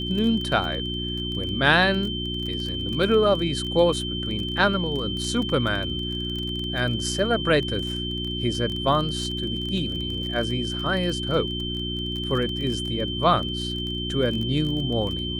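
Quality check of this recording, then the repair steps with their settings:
crackle 25/s -29 dBFS
hum 60 Hz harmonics 6 -31 dBFS
tone 3100 Hz -30 dBFS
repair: de-click; de-hum 60 Hz, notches 6; notch 3100 Hz, Q 30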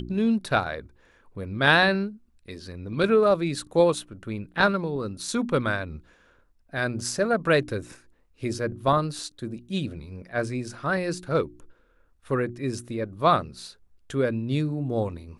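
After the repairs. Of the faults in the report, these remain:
none

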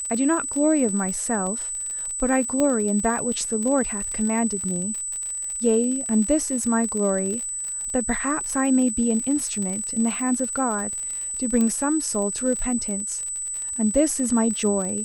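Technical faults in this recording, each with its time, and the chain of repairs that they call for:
crackle 49/s -28 dBFS
tone 8000 Hz -27 dBFS
2.6 pop -11 dBFS
11.61 pop -12 dBFS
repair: de-click; notch 8000 Hz, Q 30

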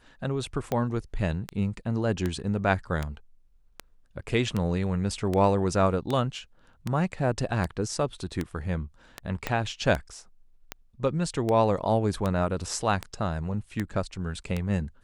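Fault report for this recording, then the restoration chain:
tick 78 rpm -15 dBFS
9.47 pop -13 dBFS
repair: de-click

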